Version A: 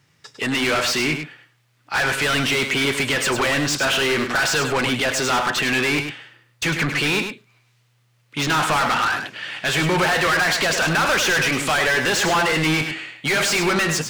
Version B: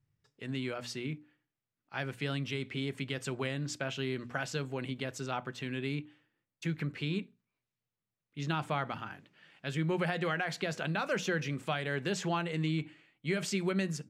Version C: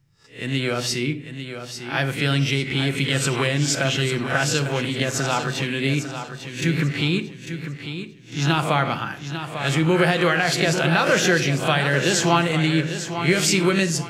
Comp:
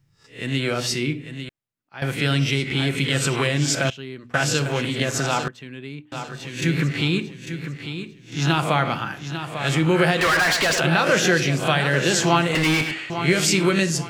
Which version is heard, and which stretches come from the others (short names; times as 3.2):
C
1.49–2.02 from B
3.9–4.34 from B
5.48–6.12 from B
10.21–10.8 from A
12.55–13.1 from A